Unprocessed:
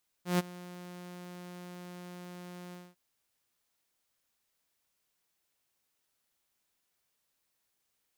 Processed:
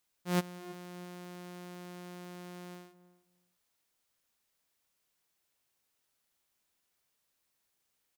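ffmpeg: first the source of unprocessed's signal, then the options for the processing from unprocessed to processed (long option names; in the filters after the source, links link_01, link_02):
-f lavfi -i "aevalsrc='0.0891*(2*mod(178*t,1)-1)':duration=2.7:sample_rate=44100,afade=type=in:duration=0.138,afade=type=out:start_time=0.138:duration=0.026:silence=0.0944,afade=type=out:start_time=2.48:duration=0.22"
-filter_complex "[0:a]asplit=2[link_01][link_02];[link_02]adelay=323,lowpass=frequency=820:poles=1,volume=-14dB,asplit=2[link_03][link_04];[link_04]adelay=323,lowpass=frequency=820:poles=1,volume=0.18[link_05];[link_01][link_03][link_05]amix=inputs=3:normalize=0"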